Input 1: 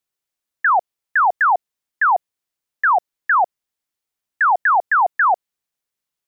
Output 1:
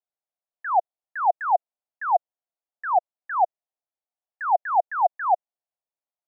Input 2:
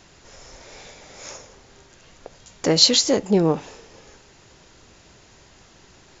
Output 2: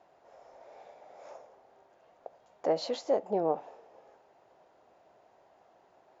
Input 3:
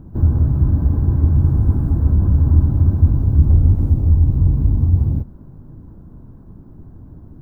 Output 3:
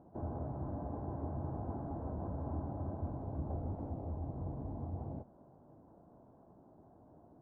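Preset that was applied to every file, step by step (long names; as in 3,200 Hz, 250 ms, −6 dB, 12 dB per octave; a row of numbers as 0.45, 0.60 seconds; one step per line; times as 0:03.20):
resonant band-pass 690 Hz, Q 3.3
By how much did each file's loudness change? −7.0, −13.5, −26.0 LU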